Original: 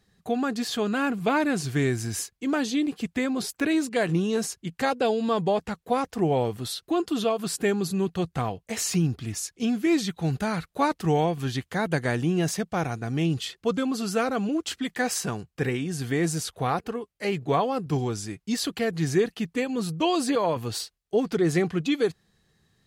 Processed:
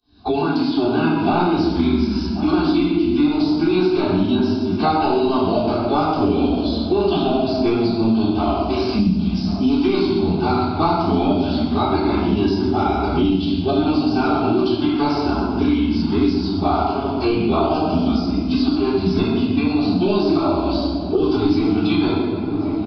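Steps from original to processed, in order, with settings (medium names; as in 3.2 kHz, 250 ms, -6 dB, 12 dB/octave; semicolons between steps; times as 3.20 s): fade-in on the opening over 1.29 s; high-pass 58 Hz 12 dB/octave; formant-preserving pitch shift -9.5 st; saturation -12 dBFS, distortion -26 dB; static phaser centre 500 Hz, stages 6; on a send: filtered feedback delay 1083 ms, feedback 49%, low-pass 2.7 kHz, level -21 dB; on the sum: simulated room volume 690 m³, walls mixed, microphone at 3.6 m; resampled via 11.025 kHz; three bands compressed up and down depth 100%; trim +2 dB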